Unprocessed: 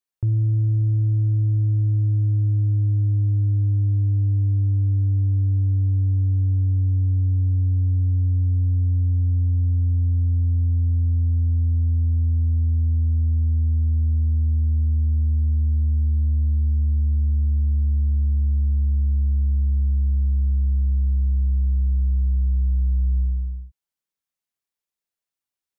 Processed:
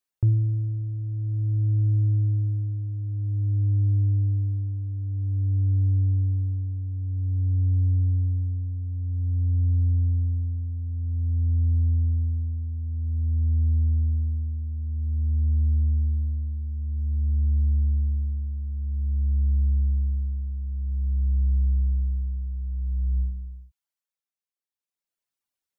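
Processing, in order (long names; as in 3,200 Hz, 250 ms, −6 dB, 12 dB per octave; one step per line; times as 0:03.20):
reverb reduction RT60 0.99 s
amplitude tremolo 0.51 Hz, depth 65%
level +2.5 dB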